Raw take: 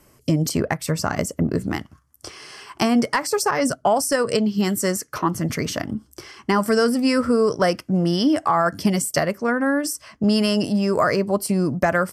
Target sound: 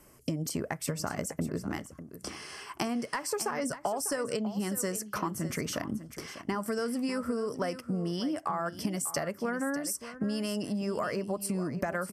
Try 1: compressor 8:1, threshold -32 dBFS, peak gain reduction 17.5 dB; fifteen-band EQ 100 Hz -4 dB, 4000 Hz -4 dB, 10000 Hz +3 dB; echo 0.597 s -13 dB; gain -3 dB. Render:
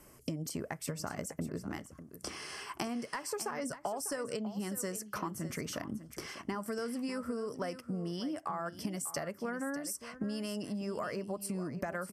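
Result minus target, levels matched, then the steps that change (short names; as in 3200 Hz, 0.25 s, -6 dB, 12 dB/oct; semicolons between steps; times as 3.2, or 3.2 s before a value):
compressor: peak gain reduction +5.5 dB
change: compressor 8:1, threshold -26 dBFS, peak gain reduction 12.5 dB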